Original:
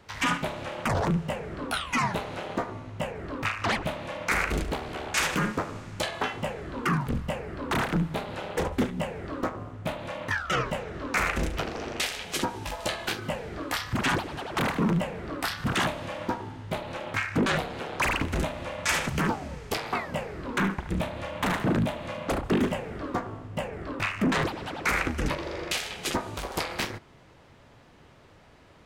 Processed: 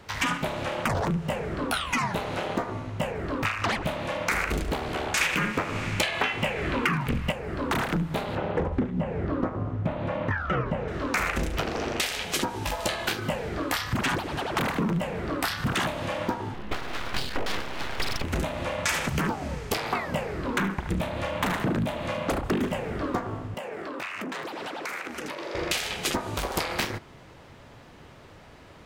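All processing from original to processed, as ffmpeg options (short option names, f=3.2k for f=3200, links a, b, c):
-filter_complex "[0:a]asettb=1/sr,asplit=3[a][b][c];[a]atrim=end=5.214[d];[b]atrim=start=5.21:end=7.32,asetpts=PTS-STARTPTS,afade=t=in:d=0.004:c=qsin,afade=t=out:st=2.106:d=0.004:c=qsin,equalizer=f=2.4k:w=1.6:g=10.5,acontrast=27[e];[c]atrim=start=7.316[f];[d][e]acrossfade=d=0.004:c1=hsin:c2=qsin[g];[g][f]acrossfade=d=0.004:c1=qsin:c2=hsin,asettb=1/sr,asplit=3[h][i][j];[h]atrim=end=8.354[k];[i]atrim=start=8.35:end=10.88,asetpts=PTS-STARTPTS,afade=t=in:d=0.004:c=qsin,afade=t=out:st=2.526:d=0.004:c=qsin,highpass=f=200:p=1,aemphasis=mode=reproduction:type=riaa,acrossover=split=2600[l][m];[m]acompressor=threshold=-55dB:ratio=4:attack=1:release=60[n];[l][n]amix=inputs=2:normalize=0[o];[j]atrim=start=10.876[p];[k][o]acrossfade=d=0.004:c1=hsin:c2=qsin[q];[q][p]acrossfade=d=0.004:c1=qsin:c2=hsin,asettb=1/sr,asplit=3[r][s][t];[r]atrim=end=16.544[u];[s]atrim=start=16.54:end=18.24,asetpts=PTS-STARTPTS,afade=t=in:d=0.004:c=qsin,afade=t=out:st=1.696:d=0.004:c=qsin,highshelf=f=4.2k:t=q:w=1.5:g=-11.5,aeval=exprs='abs(val(0))':c=same[v];[t]atrim=start=18.236[w];[u][v]acrossfade=d=0.004:c1=hsin:c2=qsin[x];[x][w]acrossfade=d=0.004:c1=qsin:c2=hsin,asettb=1/sr,asplit=3[y][z][aa];[y]atrim=end=23.544[ab];[z]atrim=start=23.54:end=25.55,asetpts=PTS-STARTPTS,afade=t=in:d=0.004:c=qsin,afade=t=out:st=2.006:d=0.004:c=qsin,highpass=310,acompressor=threshold=-36dB:ratio=12:attack=3.2:release=140:knee=1:detection=peak[ac];[aa]atrim=start=25.546[ad];[ab][ac]acrossfade=d=0.004:c1=hsin:c2=qsin[ae];[ae][ad]acrossfade=d=0.004:c1=qsin:c2=hsin,equalizer=f=15k:t=o:w=0.28:g=5.5,acompressor=threshold=-29dB:ratio=6,volume=5.5dB"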